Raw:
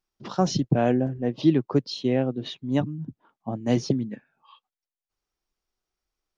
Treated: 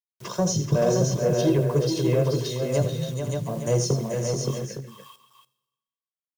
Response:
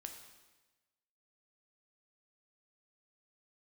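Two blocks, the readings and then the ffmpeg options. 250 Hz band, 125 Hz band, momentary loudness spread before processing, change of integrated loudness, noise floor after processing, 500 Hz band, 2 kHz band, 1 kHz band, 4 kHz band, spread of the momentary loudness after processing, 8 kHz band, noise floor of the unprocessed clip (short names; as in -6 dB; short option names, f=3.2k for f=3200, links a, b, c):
-2.5 dB, +5.0 dB, 13 LU, +1.0 dB, under -85 dBFS, +4.5 dB, +0.5 dB, -2.0 dB, +2.0 dB, 9 LU, n/a, under -85 dBFS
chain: -filter_complex "[0:a]highpass=f=40:p=1,aecho=1:1:1.9:0.84,acrossover=split=720[a][b];[a]flanger=delay=15.5:depth=7.2:speed=0.4[c];[b]acompressor=threshold=-41dB:ratio=6[d];[c][d]amix=inputs=2:normalize=0,aexciter=amount=10.4:drive=3.8:freq=6.3k,acrusher=bits=8:mix=0:aa=0.000001,asoftclip=type=tanh:threshold=-16.5dB,aecho=1:1:81|432|505|572|711|862:0.299|0.473|0.211|0.596|0.168|0.251,asplit=2[e][f];[1:a]atrim=start_sample=2205,highshelf=f=3.2k:g=11.5[g];[f][g]afir=irnorm=-1:irlink=0,volume=-10.5dB[h];[e][h]amix=inputs=2:normalize=0,volume=3dB"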